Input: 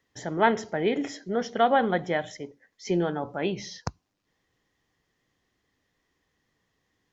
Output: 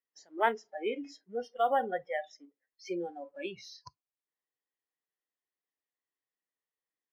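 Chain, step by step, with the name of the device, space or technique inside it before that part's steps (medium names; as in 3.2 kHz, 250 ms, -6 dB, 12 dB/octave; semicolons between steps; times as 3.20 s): phone line with mismatched companding (band-pass 400–3600 Hz; companding laws mixed up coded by mu); spectral noise reduction 26 dB; 1.16–2.24 s: peaking EQ 4.3 kHz -5 dB 1.1 oct; trim -5.5 dB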